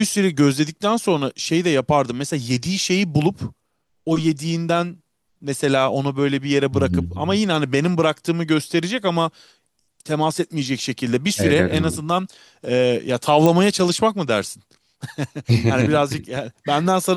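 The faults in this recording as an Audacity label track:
13.460000	13.460000	pop -5 dBFS

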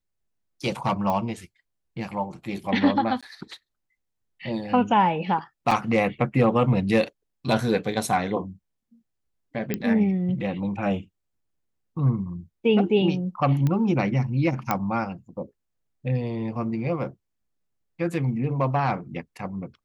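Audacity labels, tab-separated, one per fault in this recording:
1.100000	1.100000	pop -15 dBFS
3.210000	3.230000	gap 16 ms
5.710000	5.710000	gap 4.1 ms
9.740000	9.740000	pop -12 dBFS
13.670000	13.670000	pop -14 dBFS
14.710000	14.710000	pop -9 dBFS

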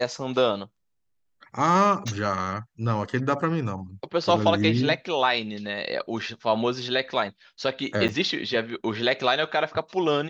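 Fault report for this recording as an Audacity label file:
2.080000	2.080000	pop -18 dBFS
8.080000	8.090000	gap 8.9 ms

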